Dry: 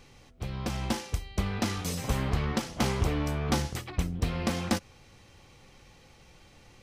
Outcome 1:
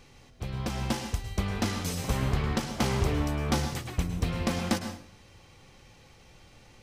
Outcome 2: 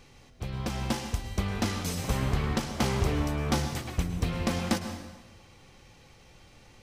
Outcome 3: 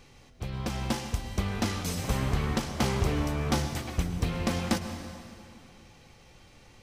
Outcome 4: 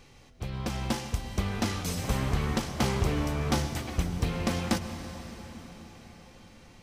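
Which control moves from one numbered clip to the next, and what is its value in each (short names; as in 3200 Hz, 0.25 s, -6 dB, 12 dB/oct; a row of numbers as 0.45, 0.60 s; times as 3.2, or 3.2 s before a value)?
plate-style reverb, RT60: 0.54, 1.2, 2.5, 5.3 s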